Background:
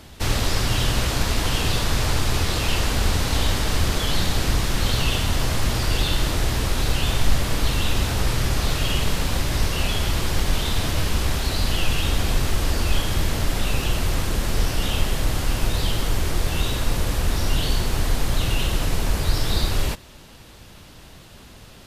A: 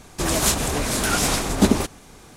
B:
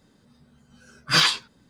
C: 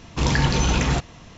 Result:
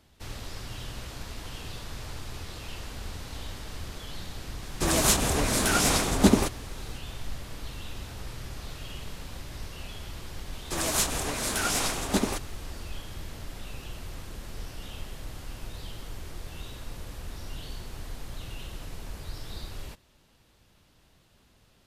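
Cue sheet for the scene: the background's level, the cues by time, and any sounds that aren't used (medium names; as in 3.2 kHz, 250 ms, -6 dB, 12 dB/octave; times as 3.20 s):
background -17.5 dB
4.62 s: add A -2.5 dB
10.52 s: add A -5.5 dB + bass shelf 360 Hz -7 dB
not used: B, C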